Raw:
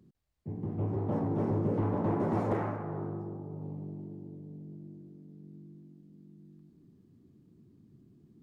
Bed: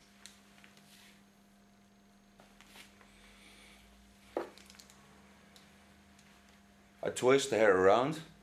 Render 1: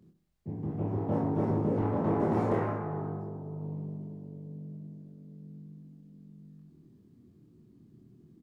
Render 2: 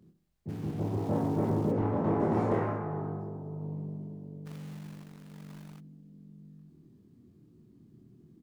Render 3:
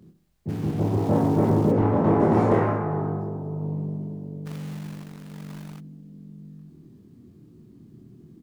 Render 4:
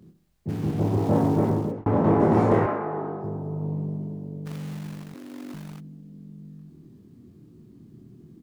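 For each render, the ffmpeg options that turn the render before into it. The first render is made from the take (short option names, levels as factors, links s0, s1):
-filter_complex "[0:a]asplit=2[s0][s1];[s1]adelay=25,volume=0.708[s2];[s0][s2]amix=inputs=2:normalize=0,asplit=2[s3][s4];[s4]adelay=66,lowpass=f=2000:p=1,volume=0.299,asplit=2[s5][s6];[s6]adelay=66,lowpass=f=2000:p=1,volume=0.47,asplit=2[s7][s8];[s8]adelay=66,lowpass=f=2000:p=1,volume=0.47,asplit=2[s9][s10];[s10]adelay=66,lowpass=f=2000:p=1,volume=0.47,asplit=2[s11][s12];[s12]adelay=66,lowpass=f=2000:p=1,volume=0.47[s13];[s3][s5][s7][s9][s11][s13]amix=inputs=6:normalize=0"
-filter_complex "[0:a]asplit=3[s0][s1][s2];[s0]afade=t=out:st=0.48:d=0.02[s3];[s1]aeval=exprs='val(0)*gte(abs(val(0)),0.00501)':c=same,afade=t=in:st=0.48:d=0.02,afade=t=out:st=1.71:d=0.02[s4];[s2]afade=t=in:st=1.71:d=0.02[s5];[s3][s4][s5]amix=inputs=3:normalize=0,asplit=3[s6][s7][s8];[s6]afade=t=out:st=4.45:d=0.02[s9];[s7]acrusher=bits=2:mode=log:mix=0:aa=0.000001,afade=t=in:st=4.45:d=0.02,afade=t=out:st=5.79:d=0.02[s10];[s8]afade=t=in:st=5.79:d=0.02[s11];[s9][s10][s11]amix=inputs=3:normalize=0"
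-af "volume=2.66"
-filter_complex "[0:a]asettb=1/sr,asplit=3[s0][s1][s2];[s0]atrim=end=2.664[s3];[s1]atrim=start=2.66:end=3.24,asetpts=PTS-STARTPTS,afade=t=in:d=0.004:c=qsin,afade=t=out:st=0.576:d=0.004:c=qsin,highpass=270,lowpass=4500[s4];[s2]atrim=start=3.236[s5];[s3][s4]acrossfade=d=0.004:c1=hsin:c2=qsin[s6];[s6][s5]acrossfade=d=0.004:c1=qsin:c2=hsin,asettb=1/sr,asplit=3[s7][s8][s9];[s7]atrim=end=5.144[s10];[s8]atrim=start=5.14:end=5.54,asetpts=PTS-STARTPTS,afade=t=in:d=0.004:c=qsin,afade=t=out:st=0.396:d=0.004:c=qsin,afreqshift=95[s11];[s9]atrim=start=5.536[s12];[s10][s11]acrossfade=d=0.004:c1=hsin:c2=qsin[s13];[s13][s12]acrossfade=d=0.004:c1=qsin:c2=hsin,asplit=2[s14][s15];[s14]atrim=end=1.86,asetpts=PTS-STARTPTS,afade=t=out:st=1.17:d=0.69:c=qsin[s16];[s15]atrim=start=1.86,asetpts=PTS-STARTPTS,afade=t=in:d=0.004:c=hsin[s17];[s16][s17]concat=n=2:v=0:a=1"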